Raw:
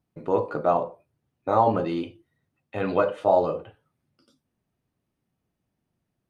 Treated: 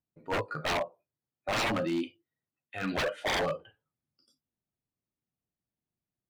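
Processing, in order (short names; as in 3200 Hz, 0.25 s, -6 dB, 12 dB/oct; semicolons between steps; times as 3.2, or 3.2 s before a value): spectral noise reduction 15 dB; 0.88–3 low shelf 130 Hz -11 dB; wavefolder -24 dBFS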